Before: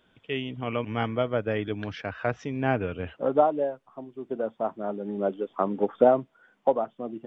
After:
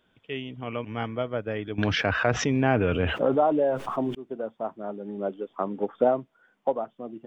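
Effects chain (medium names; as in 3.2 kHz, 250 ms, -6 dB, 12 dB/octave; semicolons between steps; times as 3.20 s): 1.78–4.15 s: level flattener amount 70%; trim -3 dB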